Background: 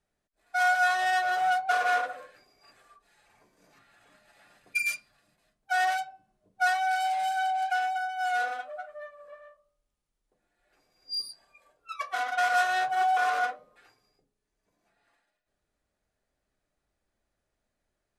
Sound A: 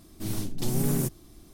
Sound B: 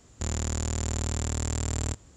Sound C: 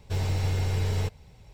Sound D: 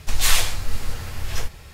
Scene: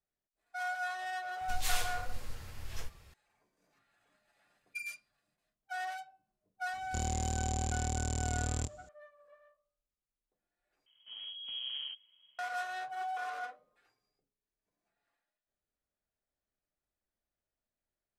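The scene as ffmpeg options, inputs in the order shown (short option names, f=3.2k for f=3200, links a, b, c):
-filter_complex "[0:a]volume=-13dB[a];[2:a]equalizer=f=1.5k:t=o:w=0.7:g=-12[b];[1:a]lowpass=f=2.8k:t=q:w=0.5098,lowpass=f=2.8k:t=q:w=0.6013,lowpass=f=2.8k:t=q:w=0.9,lowpass=f=2.8k:t=q:w=2.563,afreqshift=-3300[c];[a]asplit=2[d][e];[d]atrim=end=10.864[f];[c]atrim=end=1.53,asetpts=PTS-STARTPTS,volume=-16dB[g];[e]atrim=start=12.386[h];[4:a]atrim=end=1.73,asetpts=PTS-STARTPTS,volume=-15.5dB,afade=t=in:d=0.004:c=hsin,afade=t=out:st=1.726:d=0.004:c=hsin,adelay=1410[i];[b]atrim=end=2.16,asetpts=PTS-STARTPTS,volume=-5dB,afade=t=in:d=0.004:c=hsin,afade=t=out:st=2.156:d=0.004:c=hsin,adelay=6730[j];[f][g]acrossfade=d=0.004:c1=hsin:c2=hsin[k];[k][h]acrossfade=d=0.004:c1=hsin:c2=hsin[l];[l][i][j]amix=inputs=3:normalize=0"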